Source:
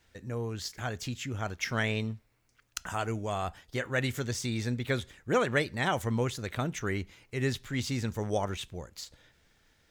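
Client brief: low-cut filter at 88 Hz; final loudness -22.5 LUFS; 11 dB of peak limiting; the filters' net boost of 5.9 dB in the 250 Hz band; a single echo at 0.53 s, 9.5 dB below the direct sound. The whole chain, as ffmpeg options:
-af "highpass=88,equalizer=f=250:t=o:g=7,alimiter=limit=-23dB:level=0:latency=1,aecho=1:1:530:0.335,volume=11.5dB"

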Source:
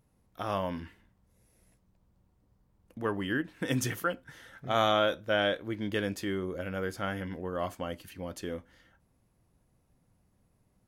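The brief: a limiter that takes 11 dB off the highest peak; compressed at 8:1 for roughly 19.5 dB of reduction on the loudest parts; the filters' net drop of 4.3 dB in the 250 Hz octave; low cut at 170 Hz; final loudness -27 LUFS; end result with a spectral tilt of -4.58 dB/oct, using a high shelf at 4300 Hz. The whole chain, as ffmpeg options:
-af "highpass=170,equalizer=f=250:t=o:g=-4.5,highshelf=f=4.3k:g=-8,acompressor=threshold=-43dB:ratio=8,volume=24.5dB,alimiter=limit=-15dB:level=0:latency=1"

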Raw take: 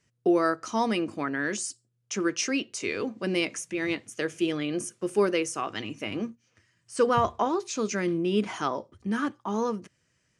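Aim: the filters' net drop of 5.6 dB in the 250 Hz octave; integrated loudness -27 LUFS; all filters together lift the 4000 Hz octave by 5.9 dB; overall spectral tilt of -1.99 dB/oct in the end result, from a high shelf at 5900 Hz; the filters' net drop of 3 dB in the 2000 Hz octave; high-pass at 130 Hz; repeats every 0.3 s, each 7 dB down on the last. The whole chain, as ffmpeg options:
-af "highpass=130,equalizer=f=250:t=o:g=-8,equalizer=f=2k:t=o:g=-7.5,equalizer=f=4k:t=o:g=9,highshelf=f=5.9k:g=7,aecho=1:1:300|600|900|1200|1500:0.447|0.201|0.0905|0.0407|0.0183,volume=1.5dB"

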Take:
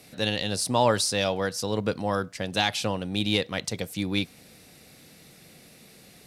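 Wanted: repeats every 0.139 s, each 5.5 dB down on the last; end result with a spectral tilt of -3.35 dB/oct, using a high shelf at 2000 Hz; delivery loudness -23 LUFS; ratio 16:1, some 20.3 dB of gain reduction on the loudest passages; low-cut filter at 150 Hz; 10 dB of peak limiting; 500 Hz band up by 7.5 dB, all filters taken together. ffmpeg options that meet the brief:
-af "highpass=150,equalizer=f=500:t=o:g=8,highshelf=f=2k:g=7.5,acompressor=threshold=-31dB:ratio=16,alimiter=level_in=4dB:limit=-24dB:level=0:latency=1,volume=-4dB,aecho=1:1:139|278|417|556|695|834|973:0.531|0.281|0.149|0.079|0.0419|0.0222|0.0118,volume=15dB"

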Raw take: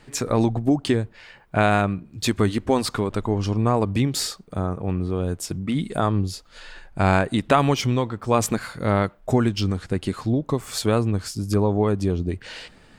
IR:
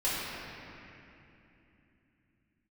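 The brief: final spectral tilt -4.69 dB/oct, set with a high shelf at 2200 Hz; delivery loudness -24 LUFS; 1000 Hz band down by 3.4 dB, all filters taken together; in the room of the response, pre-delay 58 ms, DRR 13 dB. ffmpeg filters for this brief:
-filter_complex "[0:a]equalizer=f=1k:t=o:g=-6.5,highshelf=f=2.2k:g=7,asplit=2[a][b];[1:a]atrim=start_sample=2205,adelay=58[c];[b][c]afir=irnorm=-1:irlink=0,volume=-23dB[d];[a][d]amix=inputs=2:normalize=0,volume=-1dB"

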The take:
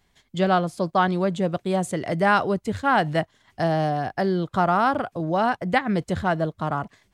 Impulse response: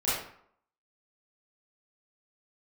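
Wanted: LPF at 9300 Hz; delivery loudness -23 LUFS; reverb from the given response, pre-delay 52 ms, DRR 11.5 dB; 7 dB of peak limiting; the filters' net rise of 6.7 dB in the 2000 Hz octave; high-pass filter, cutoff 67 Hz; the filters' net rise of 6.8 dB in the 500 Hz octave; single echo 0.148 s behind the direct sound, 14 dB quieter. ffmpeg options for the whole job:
-filter_complex "[0:a]highpass=67,lowpass=9.3k,equalizer=f=500:t=o:g=8.5,equalizer=f=2k:t=o:g=8.5,alimiter=limit=-9dB:level=0:latency=1,aecho=1:1:148:0.2,asplit=2[a][b];[1:a]atrim=start_sample=2205,adelay=52[c];[b][c]afir=irnorm=-1:irlink=0,volume=-21.5dB[d];[a][d]amix=inputs=2:normalize=0,volume=-3dB"

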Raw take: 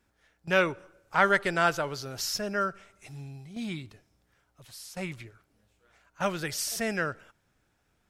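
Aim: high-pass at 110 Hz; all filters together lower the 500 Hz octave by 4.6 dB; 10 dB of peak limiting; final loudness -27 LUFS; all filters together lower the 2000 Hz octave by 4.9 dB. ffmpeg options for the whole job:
-af "highpass=110,equalizer=f=500:t=o:g=-5.5,equalizer=f=2k:t=o:g=-6.5,volume=8.5dB,alimiter=limit=-13.5dB:level=0:latency=1"

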